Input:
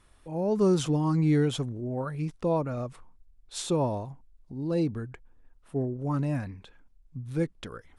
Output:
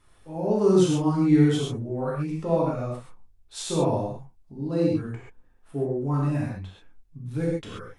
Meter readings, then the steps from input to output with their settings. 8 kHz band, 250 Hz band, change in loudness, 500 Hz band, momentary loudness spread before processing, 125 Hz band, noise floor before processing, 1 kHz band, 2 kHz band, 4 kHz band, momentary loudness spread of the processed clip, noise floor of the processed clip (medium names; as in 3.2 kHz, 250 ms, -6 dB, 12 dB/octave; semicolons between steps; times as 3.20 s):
+3.0 dB, +4.5 dB, +4.0 dB, +4.5 dB, 18 LU, +2.5 dB, -61 dBFS, +3.0 dB, +2.5 dB, +3.0 dB, 19 LU, -58 dBFS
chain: gated-style reverb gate 160 ms flat, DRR -5.5 dB; trim -3.5 dB